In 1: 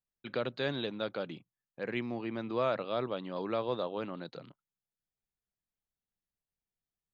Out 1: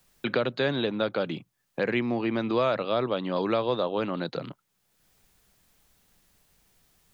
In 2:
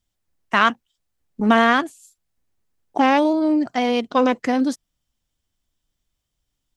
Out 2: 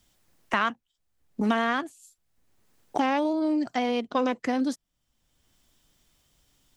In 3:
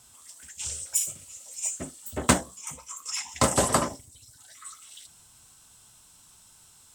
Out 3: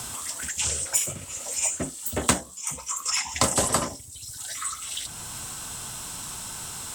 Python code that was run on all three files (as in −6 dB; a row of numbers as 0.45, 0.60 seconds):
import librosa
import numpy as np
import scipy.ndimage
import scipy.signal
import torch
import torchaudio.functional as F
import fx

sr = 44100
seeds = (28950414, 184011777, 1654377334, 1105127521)

y = fx.band_squash(x, sr, depth_pct=70)
y = y * 10.0 ** (-30 / 20.0) / np.sqrt(np.mean(np.square(y)))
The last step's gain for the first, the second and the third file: +8.0, −8.0, +6.0 decibels